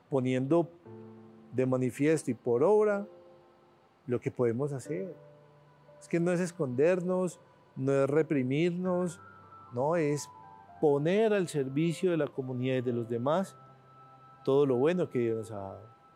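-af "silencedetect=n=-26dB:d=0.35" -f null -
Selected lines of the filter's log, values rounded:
silence_start: 0.61
silence_end: 1.59 | silence_duration: 0.97
silence_start: 2.98
silence_end: 4.11 | silence_duration: 1.12
silence_start: 4.97
silence_end: 6.13 | silence_duration: 1.16
silence_start: 7.27
silence_end: 7.83 | silence_duration: 0.56
silence_start: 9.07
silence_end: 9.77 | silence_duration: 0.71
silence_start: 10.16
silence_end: 10.83 | silence_duration: 0.67
silence_start: 13.42
silence_end: 14.48 | silence_duration: 1.06
silence_start: 15.34
silence_end: 16.16 | silence_duration: 0.81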